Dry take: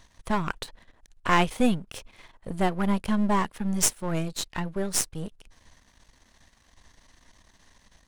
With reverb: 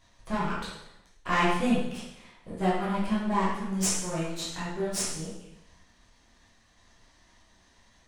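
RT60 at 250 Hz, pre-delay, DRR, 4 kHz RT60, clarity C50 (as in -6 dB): 0.85 s, 5 ms, -9.0 dB, 0.80 s, 0.5 dB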